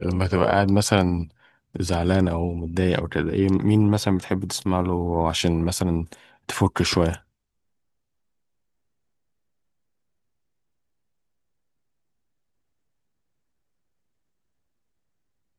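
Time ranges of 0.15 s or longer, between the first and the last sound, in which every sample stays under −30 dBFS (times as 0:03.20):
0:01.24–0:01.75
0:06.13–0:06.49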